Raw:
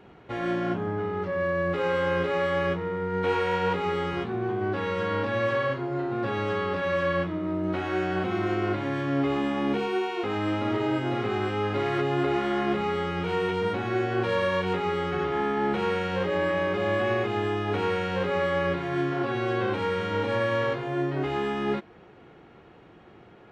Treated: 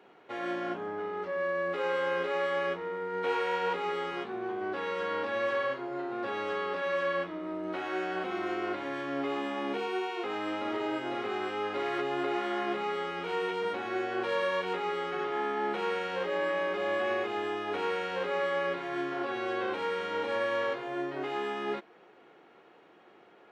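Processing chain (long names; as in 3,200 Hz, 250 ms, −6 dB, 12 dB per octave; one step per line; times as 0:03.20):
high-pass filter 360 Hz 12 dB per octave
level −3.5 dB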